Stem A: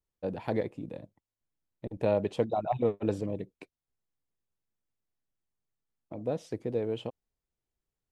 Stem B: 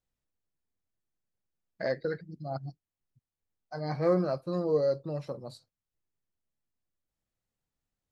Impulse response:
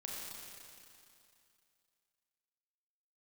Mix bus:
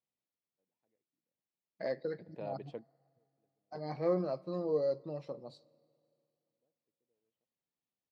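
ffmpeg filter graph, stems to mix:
-filter_complex "[0:a]adelay=350,volume=0.158[s0];[1:a]equalizer=f=1500:w=3:g=-8.5,volume=0.562,asplit=3[s1][s2][s3];[s2]volume=0.0841[s4];[s3]apad=whole_len=373414[s5];[s0][s5]sidechaingate=range=0.0126:threshold=0.00112:ratio=16:detection=peak[s6];[2:a]atrim=start_sample=2205[s7];[s4][s7]afir=irnorm=-1:irlink=0[s8];[s6][s1][s8]amix=inputs=3:normalize=0,highpass=180,lowpass=4600"

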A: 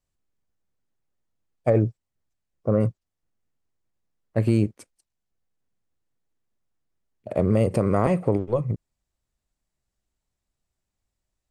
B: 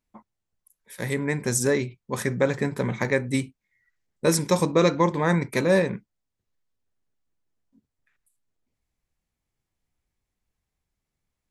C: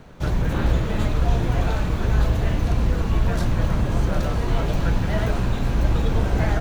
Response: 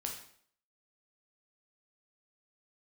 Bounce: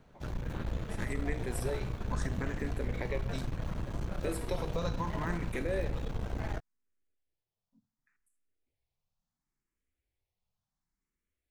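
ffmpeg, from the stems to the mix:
-filter_complex "[1:a]asplit=2[s0][s1];[s1]afreqshift=0.7[s2];[s0][s2]amix=inputs=2:normalize=1,volume=0.562,asplit=2[s3][s4];[s4]volume=0.2[s5];[2:a]aeval=exprs='(tanh(7.08*val(0)+0.7)-tanh(0.7))/7.08':c=same,volume=0.266[s6];[s3]highshelf=f=10000:g=-11,acompressor=threshold=0.0126:ratio=6,volume=1[s7];[3:a]atrim=start_sample=2205[s8];[s5][s8]afir=irnorm=-1:irlink=0[s9];[s6][s7][s9]amix=inputs=3:normalize=0"

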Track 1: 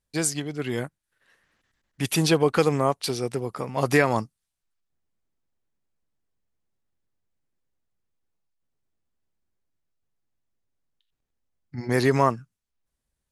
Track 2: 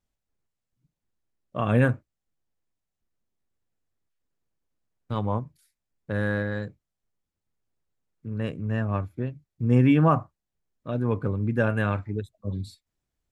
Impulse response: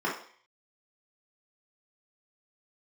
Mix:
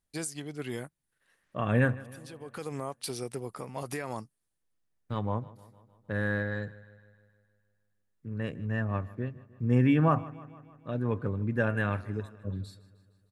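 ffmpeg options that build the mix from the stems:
-filter_complex "[0:a]equalizer=f=9800:w=2.1:g=9,alimiter=limit=0.15:level=0:latency=1:release=172,volume=0.422[s0];[1:a]equalizer=f=1800:w=6:g=6.5,volume=0.596,asplit=3[s1][s2][s3];[s2]volume=0.1[s4];[s3]apad=whole_len=587223[s5];[s0][s5]sidechaincompress=threshold=0.00316:ratio=8:attack=16:release=433[s6];[s4]aecho=0:1:154|308|462|616|770|924|1078|1232|1386|1540:1|0.6|0.36|0.216|0.13|0.0778|0.0467|0.028|0.0168|0.0101[s7];[s6][s1][s7]amix=inputs=3:normalize=0"

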